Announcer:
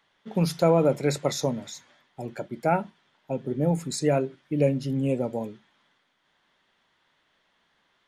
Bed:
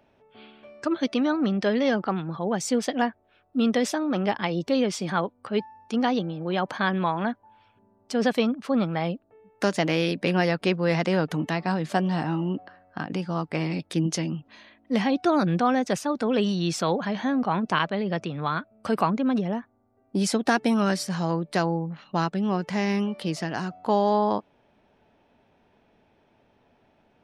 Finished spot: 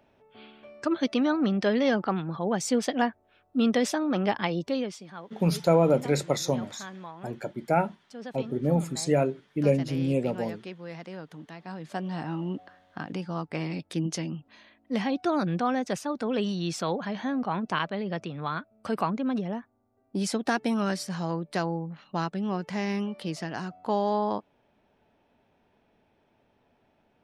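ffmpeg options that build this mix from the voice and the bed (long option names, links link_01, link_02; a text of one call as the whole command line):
ffmpeg -i stem1.wav -i stem2.wav -filter_complex "[0:a]adelay=5050,volume=-0.5dB[link_01];[1:a]volume=11.5dB,afade=type=out:start_time=4.47:duration=0.58:silence=0.158489,afade=type=in:start_time=11.57:duration=0.92:silence=0.237137[link_02];[link_01][link_02]amix=inputs=2:normalize=0" out.wav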